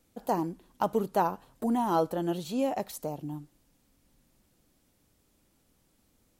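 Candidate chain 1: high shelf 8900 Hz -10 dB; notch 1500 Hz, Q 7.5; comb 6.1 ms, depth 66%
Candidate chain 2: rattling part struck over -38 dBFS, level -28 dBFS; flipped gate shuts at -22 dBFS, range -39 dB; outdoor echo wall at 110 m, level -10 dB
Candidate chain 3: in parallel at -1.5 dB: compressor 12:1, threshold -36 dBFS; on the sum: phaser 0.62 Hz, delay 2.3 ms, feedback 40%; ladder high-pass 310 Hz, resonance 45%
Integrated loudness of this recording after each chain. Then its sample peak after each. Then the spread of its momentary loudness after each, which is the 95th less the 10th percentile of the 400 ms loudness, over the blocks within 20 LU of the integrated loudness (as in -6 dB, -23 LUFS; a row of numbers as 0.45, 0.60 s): -29.5, -44.0, -35.5 LUFS; -10.5, -19.0, -18.5 dBFS; 12, 18, 9 LU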